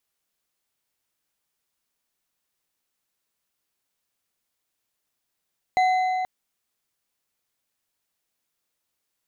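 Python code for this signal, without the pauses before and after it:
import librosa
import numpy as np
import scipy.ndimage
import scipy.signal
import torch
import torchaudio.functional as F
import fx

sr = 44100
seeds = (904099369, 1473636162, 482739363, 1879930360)

y = fx.strike_metal(sr, length_s=0.48, level_db=-16, body='bar', hz=743.0, decay_s=3.55, tilt_db=10, modes=5)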